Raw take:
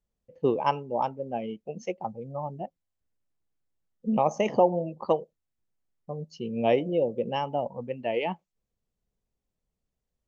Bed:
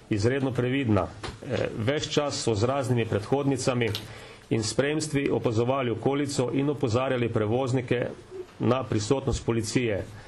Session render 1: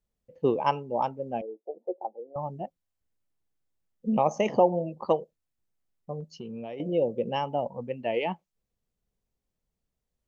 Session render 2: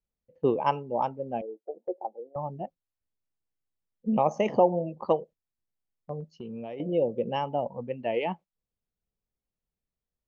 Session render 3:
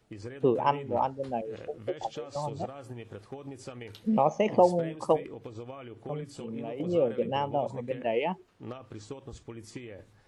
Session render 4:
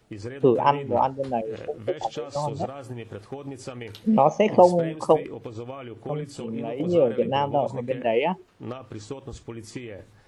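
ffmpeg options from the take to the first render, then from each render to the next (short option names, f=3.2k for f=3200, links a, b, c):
-filter_complex "[0:a]asettb=1/sr,asplit=3[a][b][c];[a]atrim=end=1.414[d];[b]atrim=start=1.41:end=2.36,asetpts=PTS-STARTPTS,afade=t=in:d=0.004:c=qsin,afade=t=out:st=0.946:d=0.004:c=qsin,asuperpass=centerf=540:order=8:qfactor=0.94[e];[c]atrim=start=2.356[f];[d][e]acrossfade=d=0.004:c1=hsin:c2=qsin[g];[g][f]acrossfade=d=0.004:c1=qsin:c2=hsin,asettb=1/sr,asplit=3[h][i][j];[h]atrim=end=6.204[k];[i]atrim=start=6.2:end=6.8,asetpts=PTS-STARTPTS,afade=t=in:d=0.004:c=qsin,afade=t=out:st=0.596:d=0.004:c=qsin,acompressor=threshold=-34dB:ratio=10:attack=3.2:release=140:knee=1:detection=peak[l];[j]atrim=start=6.796[m];[k][l]acrossfade=d=0.004:c1=hsin:c2=qsin[n];[n][m]acrossfade=d=0.004:c1=qsin:c2=hsin"
-af "lowpass=f=3.4k:p=1,agate=range=-7dB:threshold=-44dB:ratio=16:detection=peak"
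-filter_complex "[1:a]volume=-17.5dB[a];[0:a][a]amix=inputs=2:normalize=0"
-af "volume=6dB"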